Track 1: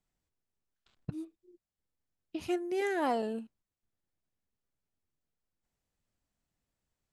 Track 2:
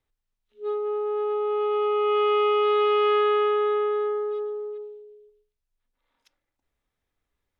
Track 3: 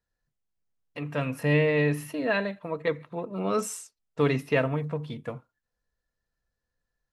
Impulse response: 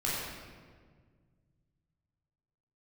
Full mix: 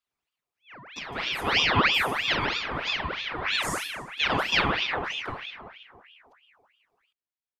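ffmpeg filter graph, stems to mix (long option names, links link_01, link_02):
-filter_complex "[0:a]alimiter=level_in=6.5dB:limit=-24dB:level=0:latency=1,volume=-6.5dB,volume=-11.5dB,asplit=2[link_01][link_02];[1:a]adelay=50,volume=-15.5dB[link_03];[2:a]volume=-2.5dB,asplit=2[link_04][link_05];[link_05]volume=-3dB[link_06];[link_02]apad=whole_len=314216[link_07];[link_04][link_07]sidechaincompress=threshold=-56dB:ratio=8:attack=16:release=169[link_08];[3:a]atrim=start_sample=2205[link_09];[link_06][link_09]afir=irnorm=-1:irlink=0[link_10];[link_01][link_03][link_08][link_10]amix=inputs=4:normalize=0,highpass=220,aeval=exprs='val(0)*sin(2*PI*1800*n/s+1800*0.7/3.1*sin(2*PI*3.1*n/s))':channel_layout=same"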